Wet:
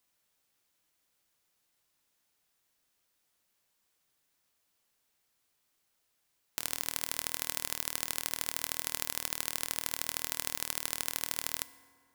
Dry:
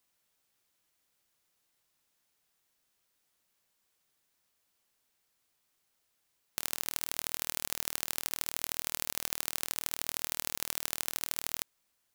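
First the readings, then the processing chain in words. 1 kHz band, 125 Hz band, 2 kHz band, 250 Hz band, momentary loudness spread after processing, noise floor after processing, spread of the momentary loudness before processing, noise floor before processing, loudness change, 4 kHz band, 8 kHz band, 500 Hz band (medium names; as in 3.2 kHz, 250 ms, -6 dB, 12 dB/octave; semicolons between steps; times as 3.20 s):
0.0 dB, +1.0 dB, +0.5 dB, 0.0 dB, 2 LU, -77 dBFS, 2 LU, -78 dBFS, 0.0 dB, 0.0 dB, 0.0 dB, 0.0 dB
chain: FDN reverb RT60 2.2 s, high-frequency decay 0.5×, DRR 14.5 dB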